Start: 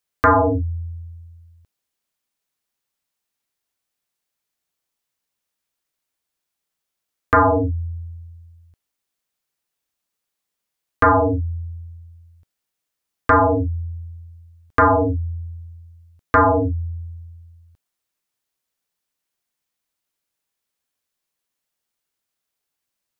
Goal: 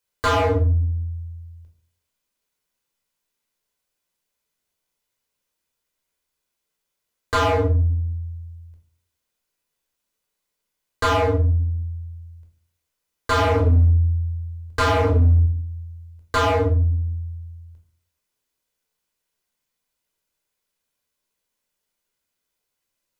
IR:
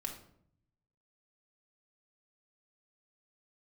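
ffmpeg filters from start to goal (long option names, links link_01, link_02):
-filter_complex "[0:a]asettb=1/sr,asplit=3[link_01][link_02][link_03];[link_01]atrim=end=13.354[link_04];[link_02]atrim=start=13.35:end=15.46,asetpts=PTS-STARTPTS,afade=type=in:duration=0.004:curve=qsin,afade=type=out:start_time=2.106:duration=0.004:curve=qsin,lowshelf=frequency=380:gain=7.5[link_05];[link_03]atrim=start=15.456[link_06];[link_04][link_05]acrossfade=duration=0.004:curve1=hsin:curve2=qsin[link_07];[link_07][link_06]acrossfade=duration=0.004:curve1=qsin:curve2=hsin,asoftclip=type=hard:threshold=-19dB[link_08];[1:a]atrim=start_sample=2205,asetrate=79380,aresample=44100[link_09];[link_08][link_09]afir=irnorm=-1:irlink=0,volume=7.5dB"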